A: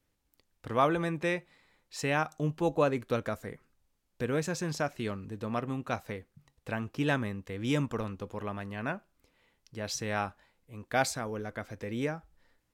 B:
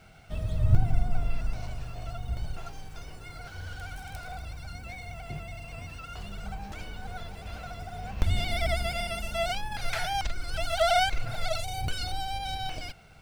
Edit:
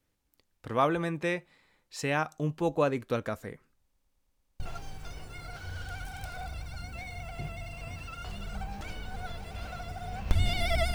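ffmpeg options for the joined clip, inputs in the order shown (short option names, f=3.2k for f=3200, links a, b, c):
-filter_complex "[0:a]apad=whole_dur=10.94,atrim=end=10.94,asplit=7[a][b][c][d][e][f][g];[a]atrim=end=3.942[h];[b]atrim=start=3.828:end=3.942[i];[c]atrim=start=3.828:end=3.942[j];[d]atrim=start=3.828:end=3.942[k];[e]atrim=start=3.828:end=3.942[l];[f]atrim=start=3.828:end=3.942[m];[g]atrim=start=3.828:end=3.942[n];[1:a]atrim=start=2.508:end=8.85[o];[h][i]acrossfade=d=0.004:c1=hsin:c2=hsin[p];[p][j]acrossfade=d=0.004:c1=hsin:c2=hsin[q];[q][k]acrossfade=d=0.004:c1=hsin:c2=hsin[r];[r][l]acrossfade=d=0.004:c1=hsin:c2=hsin[s];[s][m]acrossfade=d=0.004:c1=hsin:c2=hsin[t];[t][n]acrossfade=d=0.004:c1=hsin:c2=hsin[u];[u][o]acrossfade=d=0.004:c1=hsin:c2=hsin"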